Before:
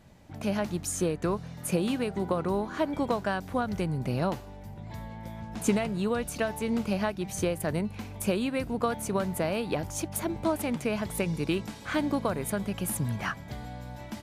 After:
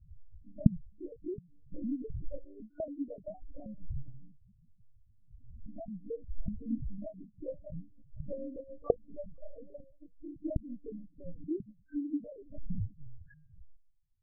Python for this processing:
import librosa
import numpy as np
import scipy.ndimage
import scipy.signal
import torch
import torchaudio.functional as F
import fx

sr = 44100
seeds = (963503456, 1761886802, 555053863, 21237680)

p1 = fx.fade_out_tail(x, sr, length_s=0.95)
p2 = fx.dmg_wind(p1, sr, seeds[0], corner_hz=180.0, level_db=-32.0)
p3 = fx.level_steps(p2, sr, step_db=9)
p4 = p2 + F.gain(torch.from_numpy(p3), 3.0).numpy()
p5 = fx.fixed_phaser(p4, sr, hz=1400.0, stages=8, at=(9.17, 9.61))
p6 = fx.spec_topn(p5, sr, count=1)
p7 = fx.comb_fb(p6, sr, f0_hz=540.0, decay_s=0.55, harmonics='all', damping=0.0, mix_pct=70)
p8 = p7 + fx.echo_single(p7, sr, ms=489, db=-24.0, dry=0)
p9 = fx.lpc_monotone(p8, sr, seeds[1], pitch_hz=290.0, order=10)
p10 = fx.spectral_expand(p9, sr, expansion=1.5)
y = F.gain(torch.from_numpy(p10), 5.0).numpy()